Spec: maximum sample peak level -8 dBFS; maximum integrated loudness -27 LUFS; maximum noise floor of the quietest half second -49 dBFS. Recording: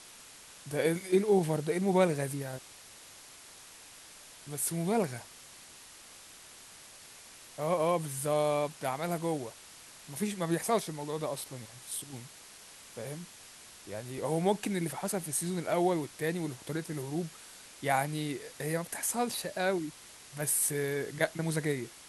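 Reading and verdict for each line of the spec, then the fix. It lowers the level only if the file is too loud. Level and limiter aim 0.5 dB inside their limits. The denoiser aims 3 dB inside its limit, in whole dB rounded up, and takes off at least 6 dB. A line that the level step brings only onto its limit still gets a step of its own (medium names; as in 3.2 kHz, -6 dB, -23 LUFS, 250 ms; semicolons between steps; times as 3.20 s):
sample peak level -13.5 dBFS: pass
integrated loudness -32.5 LUFS: pass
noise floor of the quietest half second -52 dBFS: pass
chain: none needed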